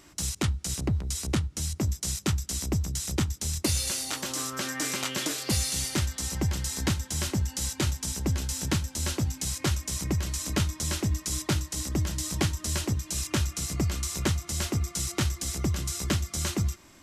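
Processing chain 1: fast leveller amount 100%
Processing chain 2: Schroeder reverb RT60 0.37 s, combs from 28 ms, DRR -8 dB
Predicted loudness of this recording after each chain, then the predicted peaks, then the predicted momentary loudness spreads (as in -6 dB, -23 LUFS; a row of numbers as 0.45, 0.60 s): -22.0, -21.5 LUFS; -7.0, -4.5 dBFS; 3, 3 LU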